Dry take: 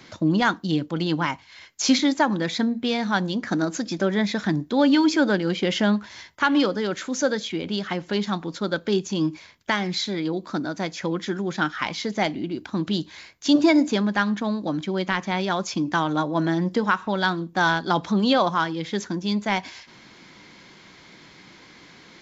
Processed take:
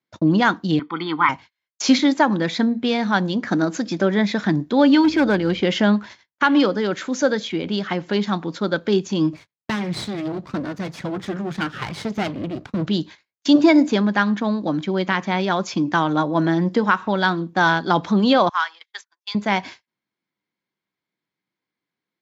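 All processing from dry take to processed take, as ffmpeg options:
-filter_complex "[0:a]asettb=1/sr,asplit=3[s0][s1][s2];[s0]atrim=end=0.794[s3];[s1]atrim=start=0.79:end=1.29,asetpts=PTS-STARTPTS,afade=t=in:d=0.004:c=qsin,afade=t=out:st=0.496:d=0.004:c=qsin,highpass=430,equalizer=f=670:t=q:w=4:g=-6,equalizer=f=1200:t=q:w=4:g=4,equalizer=f=1800:t=q:w=4:g=8,equalizer=f=2800:t=q:w=4:g=-5,lowpass=f=3500:w=0.5412,lowpass=f=3500:w=1.3066,aecho=1:1:0.9:1,atrim=end_sample=22050[s4];[s2]atrim=start=1.286[s5];[s3][s4]acrossfade=d=0.004:c1=hsin:c2=qsin[s6];[s6][s5]acrossfade=d=0.004:c1=qsin:c2=hsin,asettb=1/sr,asplit=3[s7][s8][s9];[s7]atrim=end=5.044[s10];[s8]atrim=start=5.04:end=5.61,asetpts=PTS-STARTPTS,afade=t=in:d=0.004:c=qsin,afade=t=out:st=0.566:d=0.004:c=qsin,acrossover=split=5300[s11][s12];[s12]acompressor=threshold=0.00355:ratio=4:attack=1:release=60[s13];[s11][s13]amix=inputs=2:normalize=0,volume=5.96,asoftclip=hard,volume=0.168,aeval=exprs='val(0)+0.00708*(sin(2*PI*50*n/s)+sin(2*PI*2*50*n/s)/2+sin(2*PI*3*50*n/s)/3+sin(2*PI*4*50*n/s)/4+sin(2*PI*5*50*n/s)/5)':c=same[s14];[s9]atrim=start=5.606[s15];[s10][s14]acrossfade=d=0.004:c1=hsin:c2=qsin[s16];[s16][s15]acrossfade=d=0.004:c1=qsin:c2=hsin,asettb=1/sr,asplit=3[s17][s18][s19];[s17]atrim=end=9.334[s20];[s18]atrim=start=9.33:end=12.87,asetpts=PTS-STARTPTS,afade=t=in:d=0.004:c=qsin,afade=t=out:st=3.536:d=0.004:c=qsin,aeval=exprs='max(val(0),0)':c=same,equalizer=f=140:t=o:w=1.2:g=10[s21];[s19]atrim=start=12.866[s22];[s20][s21]acrossfade=d=0.004:c1=hsin:c2=qsin[s23];[s23][s22]acrossfade=d=0.004:c1=qsin:c2=hsin,asettb=1/sr,asplit=3[s24][s25][s26];[s24]atrim=end=18.494[s27];[s25]atrim=start=18.49:end=19.35,asetpts=PTS-STARTPTS,afade=t=in:d=0.004:c=qsin,afade=t=out:st=0.856:d=0.004:c=qsin,agate=range=0.316:threshold=0.0355:ratio=16:release=100:detection=peak,highpass=f=1000:w=0.5412,highpass=f=1000:w=1.3066[s28];[s26]atrim=start=19.346[s29];[s27][s28]acrossfade=d=0.004:c1=hsin:c2=qsin[s30];[s30][s29]acrossfade=d=0.004:c1=qsin:c2=hsin,lowpass=f=3900:p=1,agate=range=0.00891:threshold=0.0112:ratio=16:detection=peak,highpass=91,volume=1.58"

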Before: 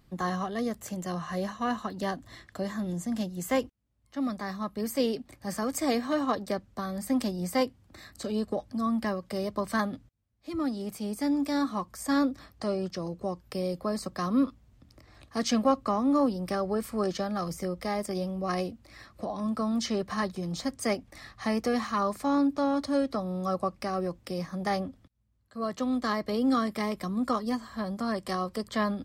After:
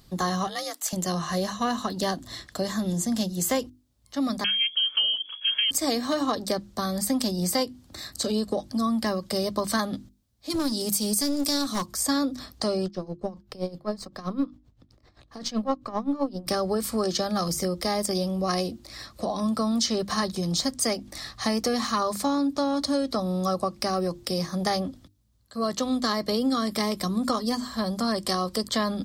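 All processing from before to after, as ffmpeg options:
-filter_complex "[0:a]asettb=1/sr,asplit=3[s0][s1][s2];[s0]atrim=end=0.474[s3];[s1]atrim=start=0.47:end=0.93,asetpts=PTS-STARTPTS,afade=t=in:d=0.004:c=qsin,afade=t=out:st=0.456:d=0.004:c=qsin,highpass=760,afreqshift=52[s4];[s2]atrim=start=0.926[s5];[s3][s4]acrossfade=d=0.004:c1=hsin:c2=qsin[s6];[s6][s5]acrossfade=d=0.004:c1=qsin:c2=hsin,asettb=1/sr,asplit=3[s7][s8][s9];[s7]atrim=end=4.444[s10];[s8]atrim=start=4.44:end=5.71,asetpts=PTS-STARTPTS,afade=t=in:d=0.004:c=qsin,afade=t=out:st=1.266:d=0.004:c=qsin,lowshelf=f=210:g=7,lowpass=f=2900:t=q:w=0.5098,lowpass=f=2900:t=q:w=0.6013,lowpass=f=2900:t=q:w=0.9,lowpass=f=2900:t=q:w=2.563,afreqshift=-3400[s11];[s9]atrim=start=5.706[s12];[s10][s11]acrossfade=d=0.004:c1=hsin:c2=qsin[s13];[s13][s12]acrossfade=d=0.004:c1=qsin:c2=hsin,asettb=1/sr,asplit=3[s14][s15][s16];[s14]atrim=end=10.504[s17];[s15]atrim=start=10.5:end=11.86,asetpts=PTS-STARTPTS,afade=t=in:d=0.004:c=qsin,afade=t=out:st=1.356:d=0.004:c=qsin,highpass=74,aeval=exprs='clip(val(0),-1,0.0251)':c=same,bass=f=250:g=3,treble=f=4000:g=10[s18];[s16]atrim=start=11.856[s19];[s17][s18]acrossfade=d=0.004:c1=hsin:c2=qsin[s20];[s20][s19]acrossfade=d=0.004:c1=qsin:c2=hsin,asettb=1/sr,asplit=3[s21][s22][s23];[s21]atrim=end=12.864[s24];[s22]atrim=start=12.86:end=16.47,asetpts=PTS-STARTPTS,afade=t=in:d=0.004:c=qsin,afade=t=out:st=3.606:d=0.004:c=qsin,aeval=exprs='if(lt(val(0),0),0.708*val(0),val(0))':c=same,equalizer=f=12000:t=o:w=2.1:g=-14.5,aeval=exprs='val(0)*pow(10,-19*(0.5-0.5*cos(2*PI*7.7*n/s))/20)':c=same[s25];[s23]atrim=start=16.466[s26];[s24][s25]acrossfade=d=0.004:c1=hsin:c2=qsin[s27];[s27][s26]acrossfade=d=0.004:c1=qsin:c2=hsin,highshelf=f=3100:t=q:w=1.5:g=6.5,bandreject=f=50:t=h:w=6,bandreject=f=100:t=h:w=6,bandreject=f=150:t=h:w=6,bandreject=f=200:t=h:w=6,bandreject=f=250:t=h:w=6,bandreject=f=300:t=h:w=6,bandreject=f=350:t=h:w=6,acompressor=threshold=0.0398:ratio=6,volume=2.11"

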